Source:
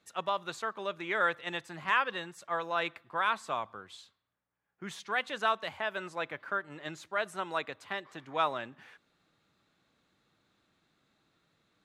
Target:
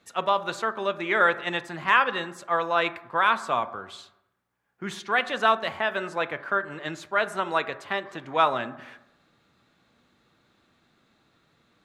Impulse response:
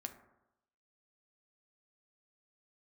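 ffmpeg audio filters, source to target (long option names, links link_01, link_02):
-filter_complex "[0:a]asplit=2[link_01][link_02];[1:a]atrim=start_sample=2205,highshelf=frequency=6100:gain=-10.5[link_03];[link_02][link_03]afir=irnorm=-1:irlink=0,volume=5.5dB[link_04];[link_01][link_04]amix=inputs=2:normalize=0,volume=1.5dB"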